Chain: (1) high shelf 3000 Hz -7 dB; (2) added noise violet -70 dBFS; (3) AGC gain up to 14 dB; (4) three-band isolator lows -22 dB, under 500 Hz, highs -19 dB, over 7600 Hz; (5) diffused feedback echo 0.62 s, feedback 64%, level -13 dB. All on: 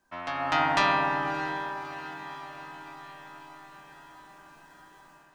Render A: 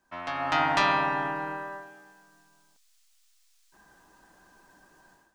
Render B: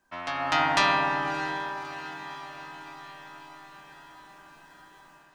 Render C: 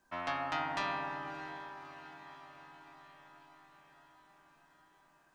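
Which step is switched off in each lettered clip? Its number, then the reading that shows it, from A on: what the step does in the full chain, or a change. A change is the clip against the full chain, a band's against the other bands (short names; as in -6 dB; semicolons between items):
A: 5, echo-to-direct -10.5 dB to none; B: 1, 8 kHz band +5.0 dB; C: 3, momentary loudness spread change -1 LU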